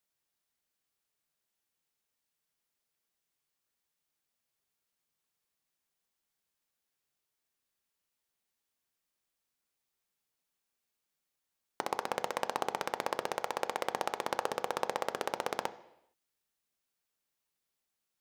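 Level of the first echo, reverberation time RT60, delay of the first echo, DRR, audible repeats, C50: none, 0.85 s, none, 11.0 dB, none, 16.5 dB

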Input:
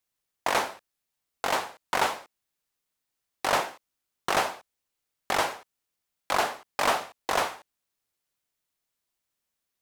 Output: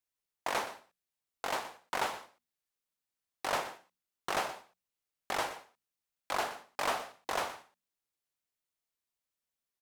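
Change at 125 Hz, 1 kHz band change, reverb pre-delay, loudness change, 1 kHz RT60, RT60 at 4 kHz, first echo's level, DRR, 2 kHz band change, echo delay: -8.5 dB, -8.0 dB, none, -8.0 dB, none, none, -14.5 dB, none, -8.0 dB, 0.122 s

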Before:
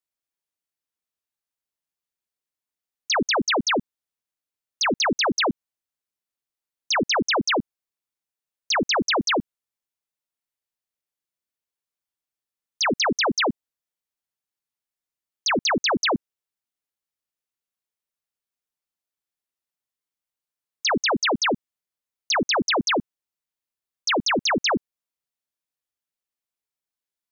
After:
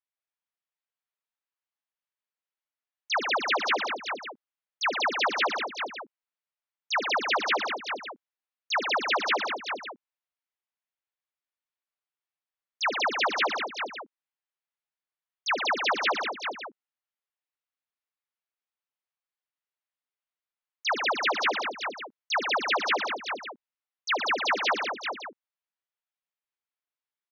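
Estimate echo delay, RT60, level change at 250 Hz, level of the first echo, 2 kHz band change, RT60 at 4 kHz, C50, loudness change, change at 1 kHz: 73 ms, none, -15.0 dB, -13.5 dB, -1.5 dB, none, none, -5.0 dB, -1.5 dB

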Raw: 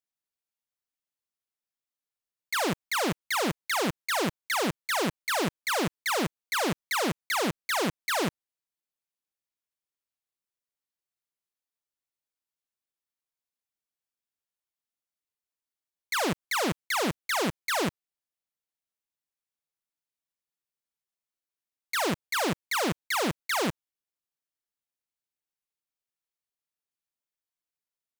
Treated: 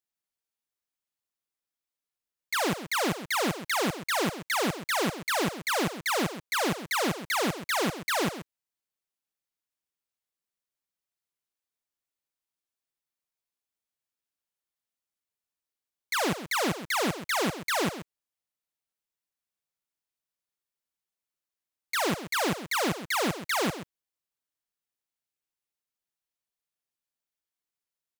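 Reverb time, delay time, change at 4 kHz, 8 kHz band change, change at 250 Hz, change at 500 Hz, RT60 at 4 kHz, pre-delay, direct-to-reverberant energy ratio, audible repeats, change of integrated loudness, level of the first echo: none, 0.131 s, +0.5 dB, +0.5 dB, +0.5 dB, +0.5 dB, none, none, none, 1, +0.5 dB, -12.0 dB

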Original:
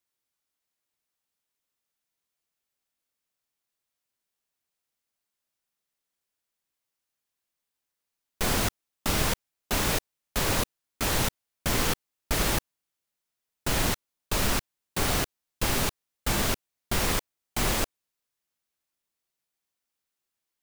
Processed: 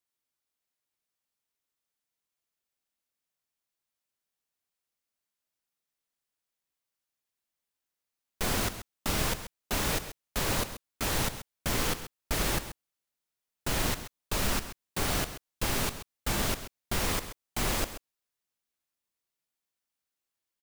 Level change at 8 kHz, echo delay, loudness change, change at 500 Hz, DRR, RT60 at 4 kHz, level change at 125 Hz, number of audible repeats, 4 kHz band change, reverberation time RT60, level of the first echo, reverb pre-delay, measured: -3.0 dB, 0.132 s, -3.0 dB, -3.0 dB, none, none, -3.5 dB, 1, -3.0 dB, none, -12.0 dB, none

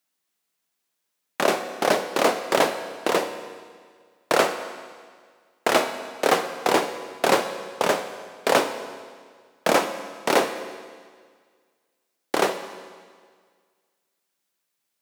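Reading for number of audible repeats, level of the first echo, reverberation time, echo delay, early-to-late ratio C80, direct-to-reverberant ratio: none, none, 1.8 s, none, 11.0 dB, 8.5 dB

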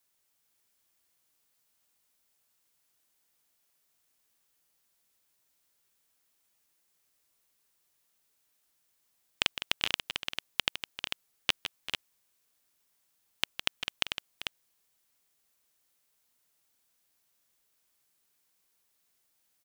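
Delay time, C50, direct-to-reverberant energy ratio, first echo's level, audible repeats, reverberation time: 0.159 s, none, none, -10.0 dB, 3, none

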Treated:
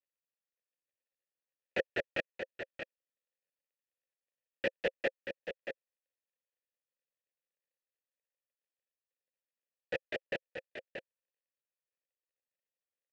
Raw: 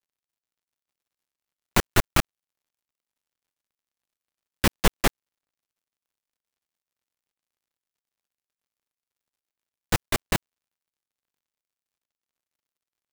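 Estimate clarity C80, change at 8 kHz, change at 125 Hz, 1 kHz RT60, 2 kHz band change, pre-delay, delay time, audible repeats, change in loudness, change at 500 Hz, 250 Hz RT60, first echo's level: none, under -30 dB, -26.0 dB, none, -8.0 dB, none, 0.63 s, 1, -13.5 dB, -4.0 dB, none, -8.0 dB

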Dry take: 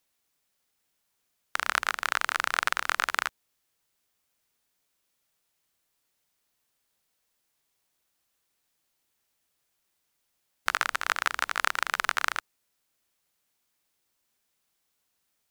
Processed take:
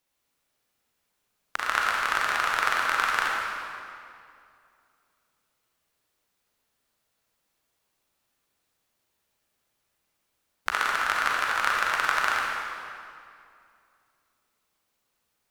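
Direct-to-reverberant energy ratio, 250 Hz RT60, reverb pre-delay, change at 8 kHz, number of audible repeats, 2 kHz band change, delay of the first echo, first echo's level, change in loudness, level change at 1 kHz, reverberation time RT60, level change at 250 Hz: -3.0 dB, 2.6 s, 34 ms, -1.0 dB, none, +3.0 dB, none, none, +2.5 dB, +4.5 dB, 2.4 s, +4.5 dB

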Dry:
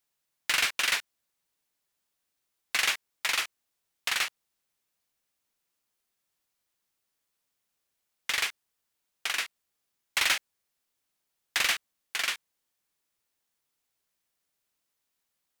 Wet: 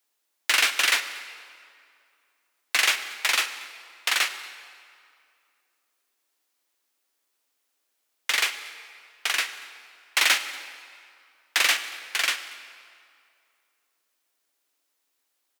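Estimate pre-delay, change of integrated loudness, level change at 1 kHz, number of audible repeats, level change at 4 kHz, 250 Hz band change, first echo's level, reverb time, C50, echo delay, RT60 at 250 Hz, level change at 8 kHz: 17 ms, +5.0 dB, +5.5 dB, 1, +5.5 dB, +4.0 dB, -22.5 dB, 2.4 s, 11.0 dB, 0.234 s, 2.3 s, +5.5 dB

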